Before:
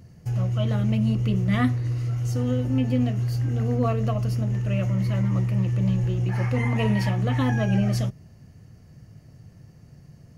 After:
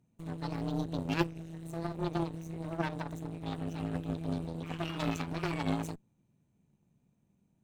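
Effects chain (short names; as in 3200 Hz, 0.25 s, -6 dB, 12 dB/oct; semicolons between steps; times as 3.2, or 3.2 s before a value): wide varispeed 1.36×; added harmonics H 3 -10 dB, 5 -41 dB, 6 -28 dB, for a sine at -11 dBFS; gain -3.5 dB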